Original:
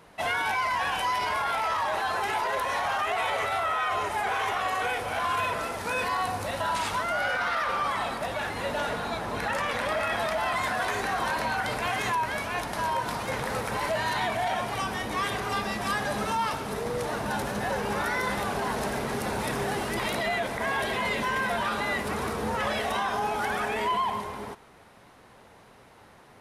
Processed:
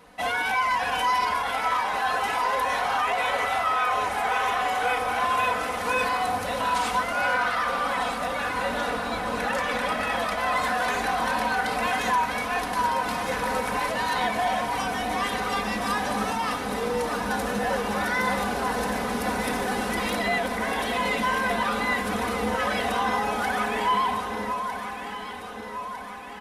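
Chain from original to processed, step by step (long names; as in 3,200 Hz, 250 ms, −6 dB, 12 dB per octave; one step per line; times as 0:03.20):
comb filter 4 ms, depth 69%
on a send: delay that swaps between a low-pass and a high-pass 627 ms, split 1,300 Hz, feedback 75%, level −6.5 dB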